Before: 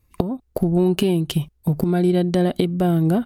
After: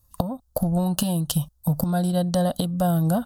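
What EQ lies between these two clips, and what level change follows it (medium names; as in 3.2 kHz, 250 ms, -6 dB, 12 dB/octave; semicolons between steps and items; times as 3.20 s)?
peaking EQ 530 Hz +7 dB 0.48 oct; treble shelf 3.1 kHz +9 dB; static phaser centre 940 Hz, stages 4; 0.0 dB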